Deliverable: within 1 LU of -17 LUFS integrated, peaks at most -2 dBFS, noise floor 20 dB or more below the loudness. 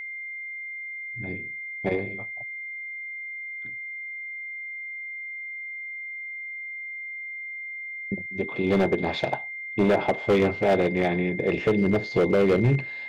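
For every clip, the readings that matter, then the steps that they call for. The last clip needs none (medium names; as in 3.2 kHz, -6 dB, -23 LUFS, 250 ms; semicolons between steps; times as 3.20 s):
clipped samples 1.2%; clipping level -15.0 dBFS; steady tone 2.1 kHz; tone level -33 dBFS; loudness -27.0 LUFS; peak level -15.0 dBFS; loudness target -17.0 LUFS
-> clip repair -15 dBFS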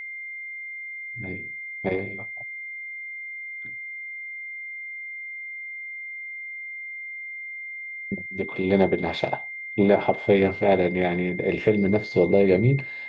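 clipped samples 0.0%; steady tone 2.1 kHz; tone level -33 dBFS
-> band-stop 2.1 kHz, Q 30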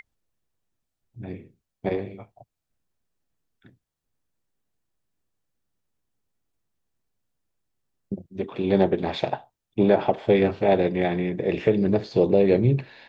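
steady tone not found; loudness -23.0 LUFS; peak level -6.0 dBFS; loudness target -17.0 LUFS
-> trim +6 dB; peak limiter -2 dBFS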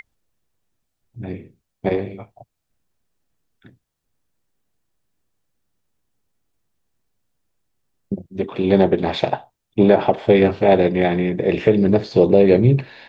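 loudness -17.0 LUFS; peak level -2.0 dBFS; noise floor -77 dBFS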